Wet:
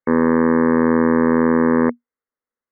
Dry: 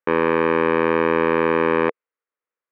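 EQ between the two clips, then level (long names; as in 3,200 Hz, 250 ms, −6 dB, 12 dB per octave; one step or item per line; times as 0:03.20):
linear-phase brick-wall low-pass 2,200 Hz
low-shelf EQ 190 Hz +9.5 dB
parametric band 240 Hz +12 dB 0.22 octaves
−1.5 dB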